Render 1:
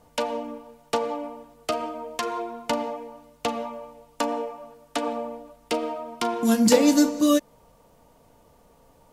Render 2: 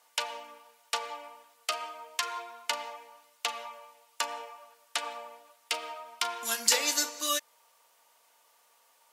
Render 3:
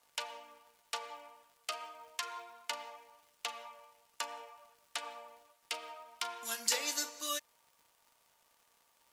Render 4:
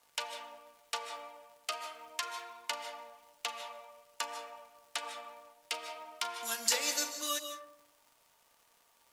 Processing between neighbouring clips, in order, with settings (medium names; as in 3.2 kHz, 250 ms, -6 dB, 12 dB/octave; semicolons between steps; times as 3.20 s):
high-pass 1.5 kHz 12 dB/octave; trim +2 dB
crackle 160 per s -47 dBFS; trim -7.5 dB
reverberation RT60 0.80 s, pre-delay 110 ms, DRR 7.5 dB; trim +2 dB